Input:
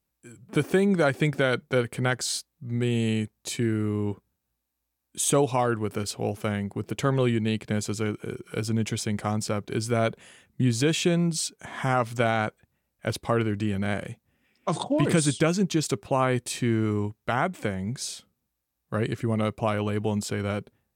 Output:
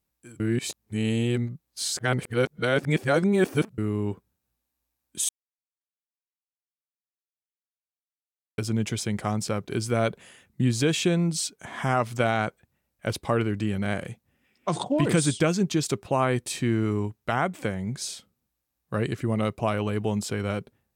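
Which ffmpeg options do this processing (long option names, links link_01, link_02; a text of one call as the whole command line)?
ffmpeg -i in.wav -filter_complex "[0:a]asplit=5[link_01][link_02][link_03][link_04][link_05];[link_01]atrim=end=0.402[link_06];[link_02]atrim=start=0.398:end=3.782,asetpts=PTS-STARTPTS,areverse[link_07];[link_03]atrim=start=3.778:end=5.29,asetpts=PTS-STARTPTS,afade=type=out:start_time=1.508:duration=0.004:curve=hsin[link_08];[link_04]atrim=start=5.29:end=8.58,asetpts=PTS-STARTPTS,volume=0[link_09];[link_05]atrim=start=8.58,asetpts=PTS-STARTPTS,afade=type=in:duration=0.004:curve=hsin[link_10];[link_06][link_07]acrossfade=duration=0.004:curve1=hsin:curve2=hsin[link_11];[link_08][link_09][link_10]concat=n=3:v=0:a=1[link_12];[link_11][link_12]acrossfade=duration=0.004:curve1=hsin:curve2=hsin" out.wav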